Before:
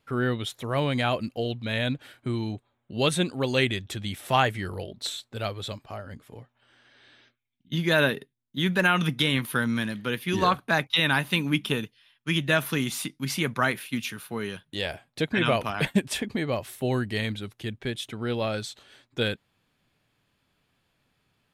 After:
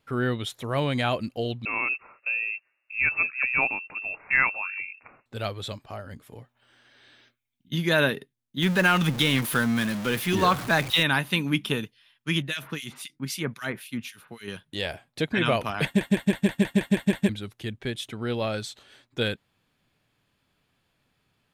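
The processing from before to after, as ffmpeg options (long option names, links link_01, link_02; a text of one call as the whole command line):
ffmpeg -i in.wav -filter_complex "[0:a]asettb=1/sr,asplit=3[link_01][link_02][link_03];[link_01]atrim=end=1.654[link_04];[link_02]atrim=start=1.65:end=5.26,asetpts=PTS-STARTPTS,afade=type=in:duration=0.004:curve=qsin,afade=type=out:start_time=3.606:duration=0.004:curve=qsin,lowpass=frequency=2400:width_type=q:width=0.5098,lowpass=frequency=2400:width_type=q:width=0.6013,lowpass=frequency=2400:width_type=q:width=0.9,lowpass=frequency=2400:width_type=q:width=2.563,afreqshift=-2800[link_05];[link_03]atrim=start=5.256[link_06];[link_04][link_05]acrossfade=duration=0.004:curve1=hsin:curve2=qsin[link_07];[link_07][link_06]acrossfade=duration=0.004:curve1=qsin:curve2=hsin,asettb=1/sr,asplit=3[link_08][link_09][link_10];[link_08]atrim=end=5.984[link_11];[link_09]atrim=start=5.98:end=7.89,asetpts=PTS-STARTPTS,afade=type=in:duration=0.004:curve=qsin,afade=type=out:start_time=1.906:duration=0.004:curve=qsin,highshelf=frequency=8100:gain=6[link_12];[link_10]atrim=start=7.886[link_13];[link_11][link_12]acrossfade=duration=0.004:curve1=hsin:curve2=qsin[link_14];[link_14][link_13]acrossfade=duration=0.004:curve1=qsin:curve2=hsin,asettb=1/sr,asplit=3[link_15][link_16][link_17];[link_15]atrim=end=8.624[link_18];[link_16]atrim=start=8.62:end=11.03,asetpts=PTS-STARTPTS,afade=type=in:duration=0.004:curve=qsin,afade=type=out:start_time=2.406:duration=0.004:curve=qsin,aeval=exprs='val(0)+0.5*0.0355*sgn(val(0))':channel_layout=same[link_19];[link_17]atrim=start=11.026[link_20];[link_18][link_19]acrossfade=duration=0.004:curve1=hsin:curve2=qsin[link_21];[link_21][link_20]acrossfade=duration=0.004:curve1=qsin:curve2=hsin,asettb=1/sr,asplit=3[link_22][link_23][link_24];[link_22]atrim=end=12.424[link_25];[link_23]atrim=start=12.42:end=14.48,asetpts=PTS-STARTPTS,afade=type=in:duration=0.004:curve=qsin,afade=type=out:start_time=2.056:duration=0.004:curve=qsin,acrossover=split=2100[link_26][link_27];[link_26]aeval=exprs='val(0)*(1-1/2+1/2*cos(2*PI*3.8*n/s))':channel_layout=same[link_28];[link_27]aeval=exprs='val(0)*(1-1/2-1/2*cos(2*PI*3.8*n/s))':channel_layout=same[link_29];[link_28][link_29]amix=inputs=2:normalize=0[link_30];[link_24]atrim=start=14.476[link_31];[link_25][link_30]acrossfade=duration=0.004:curve1=hsin:curve2=qsin[link_32];[link_32][link_31]acrossfade=duration=0.004:curve1=qsin:curve2=hsin,asplit=10[link_33][link_34][link_35][link_36][link_37][link_38][link_39][link_40][link_41][link_42];[link_33]atrim=end=16.012[link_43];[link_34]atrim=start=15.848:end=16.012[link_44];[link_35]atrim=start=15.848:end=16.012[link_45];[link_36]atrim=start=15.848:end=16.012[link_46];[link_37]atrim=start=15.848:end=16.012[link_47];[link_38]atrim=start=15.848:end=16.012[link_48];[link_39]atrim=start=15.848:end=16.012[link_49];[link_40]atrim=start=15.848:end=16.012[link_50];[link_41]atrim=start=15.848:end=16.012[link_51];[link_42]atrim=start=17.288[link_52];[link_43][link_44]acrossfade=duration=0.004:curve1=hsin:curve2=hsin[link_53];[link_53][link_45]acrossfade=duration=0.004:curve1=hsin:curve2=hsin[link_54];[link_54][link_46]acrossfade=duration=0.004:curve1=hsin:curve2=hsin[link_55];[link_55][link_47]acrossfade=duration=0.004:curve1=hsin:curve2=hsin[link_56];[link_56][link_48]acrossfade=duration=0.004:curve1=hsin:curve2=hsin[link_57];[link_57][link_49]acrossfade=duration=0.004:curve1=hsin:curve2=hsin[link_58];[link_58][link_50]acrossfade=duration=0.004:curve1=hsin:curve2=hsin[link_59];[link_59][link_51]acrossfade=duration=0.004:curve1=hsin:curve2=hsin[link_60];[link_60][link_52]acrossfade=duration=0.004:curve1=hsin:curve2=hsin" out.wav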